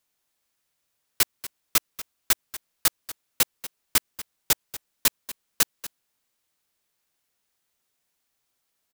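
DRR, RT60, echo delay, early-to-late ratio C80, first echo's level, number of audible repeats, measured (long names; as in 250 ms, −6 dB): no reverb audible, no reverb audible, 237 ms, no reverb audible, −15.5 dB, 1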